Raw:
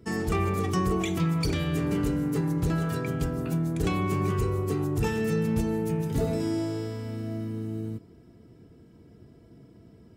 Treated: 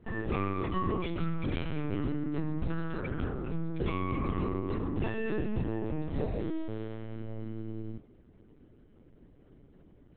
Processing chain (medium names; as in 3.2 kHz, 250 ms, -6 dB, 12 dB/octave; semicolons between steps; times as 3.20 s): LPC vocoder at 8 kHz pitch kept; trim -5 dB